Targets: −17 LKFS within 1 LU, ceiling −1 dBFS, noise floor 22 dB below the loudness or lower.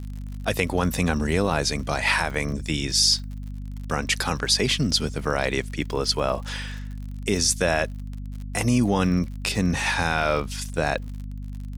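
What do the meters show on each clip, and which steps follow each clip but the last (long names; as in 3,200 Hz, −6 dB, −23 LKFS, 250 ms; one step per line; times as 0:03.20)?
crackle rate 55 per second; mains hum 50 Hz; hum harmonics up to 250 Hz; level of the hum −31 dBFS; integrated loudness −23.5 LKFS; sample peak −6.0 dBFS; target loudness −17.0 LKFS
→ click removal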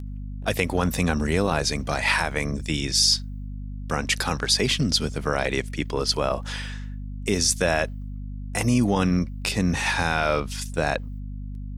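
crackle rate 0.42 per second; mains hum 50 Hz; hum harmonics up to 250 Hz; level of the hum −31 dBFS
→ hum removal 50 Hz, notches 5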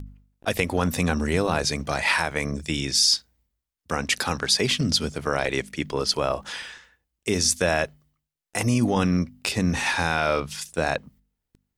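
mains hum none found; integrated loudness −24.0 LKFS; sample peak −6.5 dBFS; target loudness −17.0 LKFS
→ level +7 dB
brickwall limiter −1 dBFS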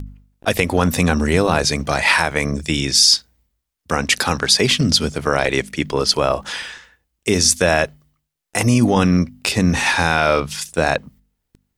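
integrated loudness −17.0 LKFS; sample peak −1.0 dBFS; background noise floor −76 dBFS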